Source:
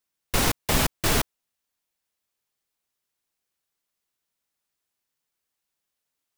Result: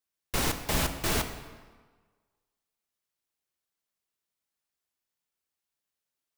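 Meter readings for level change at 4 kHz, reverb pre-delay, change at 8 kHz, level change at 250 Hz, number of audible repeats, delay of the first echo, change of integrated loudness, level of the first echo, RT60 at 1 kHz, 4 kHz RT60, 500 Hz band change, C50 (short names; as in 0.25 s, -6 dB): -5.5 dB, 4 ms, -5.5 dB, -5.0 dB, none, none, -5.5 dB, none, 1.5 s, 1.1 s, -5.0 dB, 9.5 dB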